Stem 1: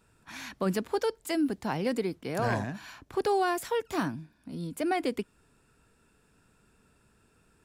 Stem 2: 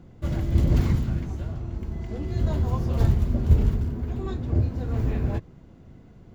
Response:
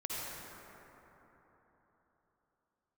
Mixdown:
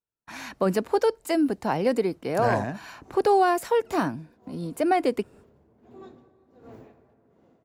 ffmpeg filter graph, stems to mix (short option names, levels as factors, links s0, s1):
-filter_complex "[0:a]agate=range=0.0141:threshold=0.00178:ratio=16:detection=peak,bandreject=f=3400:w=13,volume=1.19,asplit=2[s0][s1];[1:a]highpass=220,acompressor=threshold=0.0158:ratio=6,aeval=exprs='val(0)*pow(10,-22*(0.5-0.5*cos(2*PI*1.4*n/s))/20)':c=same,adelay=1750,volume=0.316,asplit=2[s2][s3];[s3]volume=0.211[s4];[s1]apad=whole_len=356954[s5];[s2][s5]sidechaincompress=threshold=0.00891:ratio=8:attack=22:release=412[s6];[2:a]atrim=start_sample=2205[s7];[s4][s7]afir=irnorm=-1:irlink=0[s8];[s0][s6][s8]amix=inputs=3:normalize=0,equalizer=f=620:t=o:w=1.9:g=7"